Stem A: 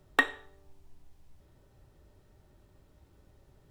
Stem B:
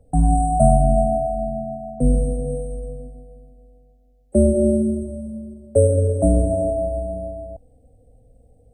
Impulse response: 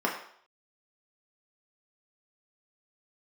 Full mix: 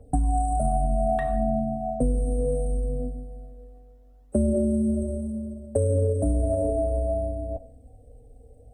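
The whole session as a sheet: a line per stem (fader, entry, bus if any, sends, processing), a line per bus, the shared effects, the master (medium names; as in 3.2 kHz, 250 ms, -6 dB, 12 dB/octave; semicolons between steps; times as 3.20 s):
-14.5 dB, 1.00 s, send -12 dB, none
+1.5 dB, 0.00 s, send -20.5 dB, peak limiter -9.5 dBFS, peak gain reduction 7.5 dB; comb of notches 170 Hz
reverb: on, RT60 0.60 s, pre-delay 3 ms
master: phaser 0.66 Hz, delay 2.7 ms, feedback 40%; compression 6:1, threshold -20 dBFS, peak gain reduction 11 dB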